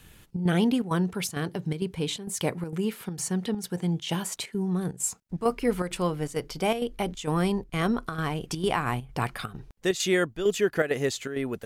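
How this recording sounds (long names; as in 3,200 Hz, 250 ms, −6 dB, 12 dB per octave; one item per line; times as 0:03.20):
chopped level 2.2 Hz, depth 60%, duty 80%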